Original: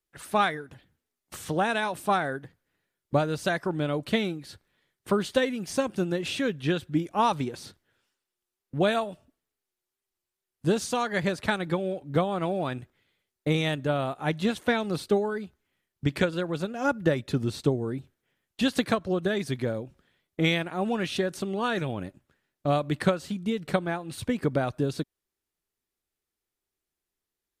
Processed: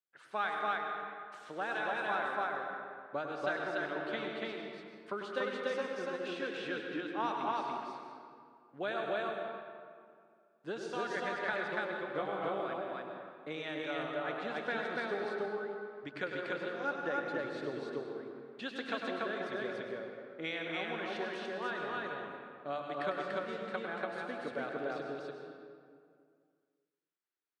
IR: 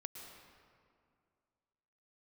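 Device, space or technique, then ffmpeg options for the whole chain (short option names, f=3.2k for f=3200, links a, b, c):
station announcement: -filter_complex "[0:a]highpass=340,lowpass=4.2k,equalizer=f=1.5k:t=o:w=0.54:g=6.5,aecho=1:1:99.13|288.6:0.398|0.891[a];[1:a]atrim=start_sample=2205[b];[a][b]afir=irnorm=-1:irlink=0,asettb=1/sr,asplit=3[c][d][e];[c]atrim=end=12.134[f];[d]atrim=start=12.13:end=12.61,asetpts=PTS-STARTPTS,afade=t=in:d=0.004:c=qsin,afade=t=out:st=0.476:d=0.004:c=qsin,asplit=2[g][h];[h]adelay=20,volume=-4dB[i];[g][i]amix=inputs=2:normalize=0,atrim=end_sample=21168[j];[e]atrim=start=12.606[k];[f][j]acrossfade=d=0.004:c1=hsin:c2=qsin[l];[l][k]acrossfade=d=0.004:c1=qsin:c2=hsin,volume=-8dB"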